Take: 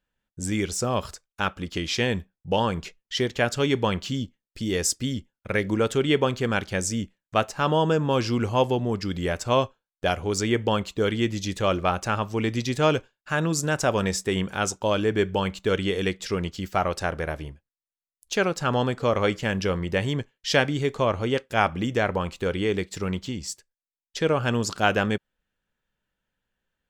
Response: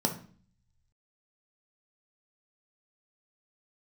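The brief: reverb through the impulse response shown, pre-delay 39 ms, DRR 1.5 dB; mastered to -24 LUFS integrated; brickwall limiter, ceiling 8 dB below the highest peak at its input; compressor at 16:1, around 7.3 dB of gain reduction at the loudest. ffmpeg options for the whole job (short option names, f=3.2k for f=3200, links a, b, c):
-filter_complex "[0:a]acompressor=threshold=-23dB:ratio=16,alimiter=limit=-19.5dB:level=0:latency=1,asplit=2[a][b];[1:a]atrim=start_sample=2205,adelay=39[c];[b][c]afir=irnorm=-1:irlink=0,volume=-9.5dB[d];[a][d]amix=inputs=2:normalize=0,volume=2dB"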